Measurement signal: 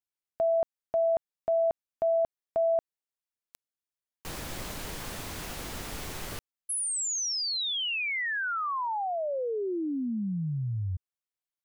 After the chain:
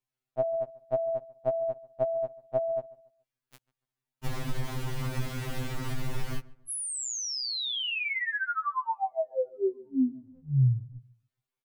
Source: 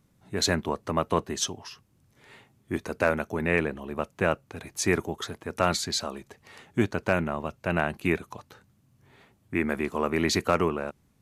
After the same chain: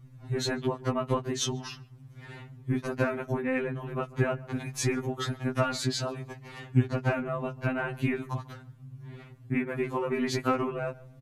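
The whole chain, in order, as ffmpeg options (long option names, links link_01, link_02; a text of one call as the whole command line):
ffmpeg -i in.wav -filter_complex "[0:a]bass=frequency=250:gain=11,treble=frequency=4000:gain=-7,acompressor=threshold=-39dB:ratio=3:attack=77:release=89:knee=6:detection=peak,asplit=2[link_01][link_02];[link_02]adelay=142,lowpass=frequency=1700:poles=1,volume=-20dB,asplit=2[link_03][link_04];[link_04]adelay=142,lowpass=frequency=1700:poles=1,volume=0.34,asplit=2[link_05][link_06];[link_06]adelay=142,lowpass=frequency=1700:poles=1,volume=0.34[link_07];[link_01][link_03][link_05][link_07]amix=inputs=4:normalize=0,afftfilt=real='re*2.45*eq(mod(b,6),0)':imag='im*2.45*eq(mod(b,6),0)':win_size=2048:overlap=0.75,volume=7dB" out.wav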